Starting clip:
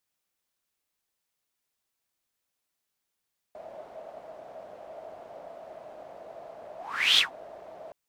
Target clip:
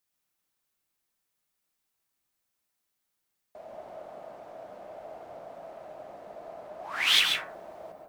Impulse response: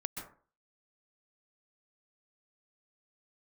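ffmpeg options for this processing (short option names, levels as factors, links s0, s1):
-filter_complex "[0:a]asetnsamples=n=441:p=0,asendcmd='7.07 highshelf g 10.5',highshelf=f=9400:g=4[s0];[1:a]atrim=start_sample=2205[s1];[s0][s1]afir=irnorm=-1:irlink=0"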